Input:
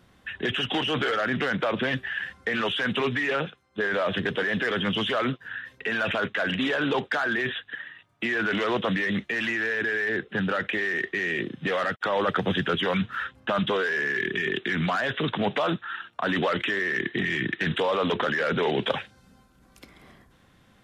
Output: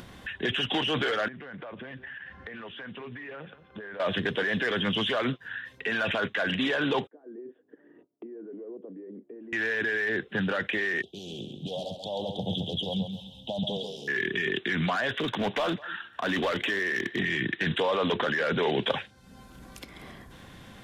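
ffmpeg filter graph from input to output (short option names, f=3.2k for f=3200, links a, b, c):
-filter_complex "[0:a]asettb=1/sr,asplit=3[a][b][c];[a]atrim=end=1.284[d];[b]atrim=start=1.28:end=4,asetpts=PTS-STARTPTS,afade=t=in:d=0.004:c=qsin,afade=t=out:st=2.716:d=0.004:c=qsin,acompressor=threshold=-41dB:ratio=4:attack=3.2:release=140:knee=1:detection=peak,lowpass=2.2k,aecho=1:1:175:0.1,atrim=end_sample=119952[e];[c]atrim=start=3.996[f];[d][e]acrossfade=d=0.004:c1=hsin:c2=qsin[g];[g][f]acrossfade=d=0.004:c1=qsin:c2=hsin,asettb=1/sr,asplit=3[h][i][j];[h]atrim=end=7.074[k];[i]atrim=start=7.07:end=9.53,asetpts=PTS-STARTPTS,afade=t=in:d=0.004:c=qsin,afade=t=out:st=2.456:d=0.004:c=qsin,agate=range=-33dB:threshold=-53dB:ratio=3:release=100:detection=peak,acompressor=threshold=-44dB:ratio=2:attack=3.2:release=140:knee=1:detection=peak,asuperpass=centerf=350:order=4:qfactor=1.7[l];[j]atrim=start=9.526[m];[k][l]acrossfade=d=0.004:c1=hsin:c2=qsin[n];[n][m]acrossfade=d=0.004:c1=qsin:c2=hsin,asettb=1/sr,asplit=3[o][p][q];[o]atrim=end=11.024[r];[p]atrim=start=11.02:end=14.08,asetpts=PTS-STARTPTS,afade=t=in:d=0.004:c=qsin,afade=t=out:st=3.056:d=0.004:c=qsin,asuperstop=centerf=1600:order=12:qfactor=0.69,equalizer=f=370:t=o:w=1.2:g=-10.5,aecho=1:1:135|270|405:0.447|0.116|0.0302,atrim=end_sample=134946[s];[q]atrim=start=14.076[t];[r][s]acrossfade=d=0.004:c1=hsin:c2=qsin[u];[u][t]acrossfade=d=0.004:c1=qsin:c2=hsin,asettb=1/sr,asplit=3[v][w][x];[v]atrim=end=15.094[y];[w]atrim=start=15.09:end=17.19,asetpts=PTS-STARTPTS,afade=t=in:d=0.004:c=qsin,afade=t=out:st=2.096:d=0.004:c=qsin,aecho=1:1:202:0.0794,atrim=end_sample=92610,asoftclip=type=hard:threshold=-21dB,equalizer=f=150:t=o:w=0.27:g=-9[z];[x]atrim=start=17.186[aa];[y][z]acrossfade=d=0.004:c1=hsin:c2=qsin[ab];[ab][aa]acrossfade=d=0.004:c1=qsin:c2=hsin,equalizer=f=3.4k:w=4.9:g=2,bandreject=f=1.3k:w=14,acompressor=mode=upward:threshold=-34dB:ratio=2.5,volume=-1.5dB"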